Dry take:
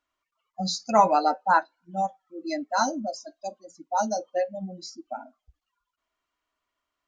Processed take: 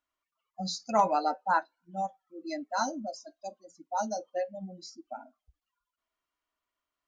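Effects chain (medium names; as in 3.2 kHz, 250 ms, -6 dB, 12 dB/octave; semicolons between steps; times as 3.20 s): hard clipper -7.5 dBFS, distortion -42 dB; trim -6 dB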